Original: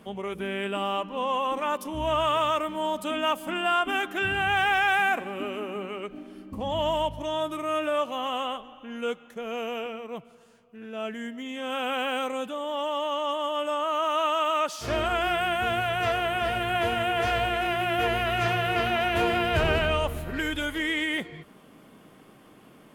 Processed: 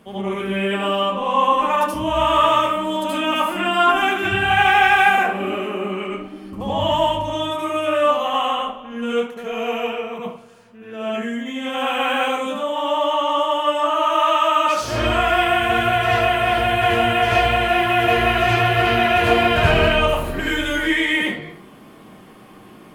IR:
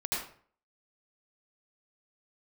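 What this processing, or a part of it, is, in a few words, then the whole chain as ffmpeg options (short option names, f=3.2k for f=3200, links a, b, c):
bathroom: -filter_complex "[1:a]atrim=start_sample=2205[a];[0:a][a]afir=irnorm=-1:irlink=0,volume=3dB"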